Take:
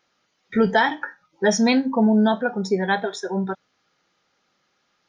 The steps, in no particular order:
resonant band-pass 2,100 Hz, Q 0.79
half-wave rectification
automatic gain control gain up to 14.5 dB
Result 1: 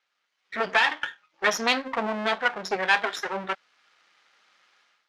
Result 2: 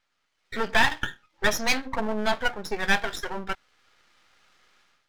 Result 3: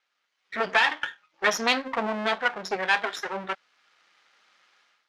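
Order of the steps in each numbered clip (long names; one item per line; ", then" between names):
half-wave rectification, then automatic gain control, then resonant band-pass
automatic gain control, then resonant band-pass, then half-wave rectification
automatic gain control, then half-wave rectification, then resonant band-pass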